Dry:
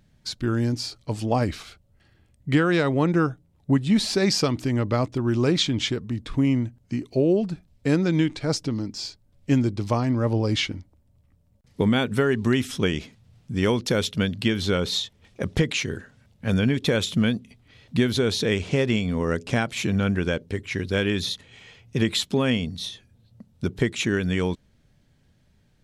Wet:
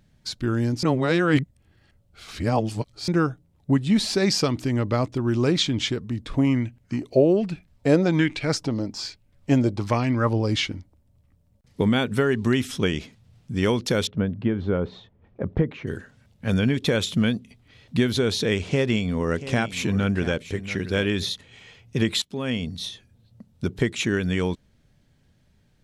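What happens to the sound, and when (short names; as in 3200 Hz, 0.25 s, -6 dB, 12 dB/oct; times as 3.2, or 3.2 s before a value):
0.83–3.08 reverse
6.3–10.29 LFO bell 1.2 Hz 550–2600 Hz +12 dB
14.07–15.87 LPF 1100 Hz
18.65–21.27 echo 0.685 s -14 dB
22.22–22.71 fade in linear, from -19 dB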